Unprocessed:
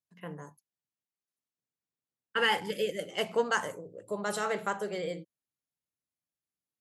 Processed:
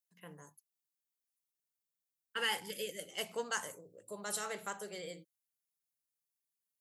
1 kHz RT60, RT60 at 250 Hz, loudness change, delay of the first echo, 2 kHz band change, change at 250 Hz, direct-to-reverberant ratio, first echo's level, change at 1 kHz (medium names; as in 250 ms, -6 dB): no reverb, no reverb, -7.5 dB, no echo, -8.0 dB, -11.5 dB, no reverb, no echo, -10.0 dB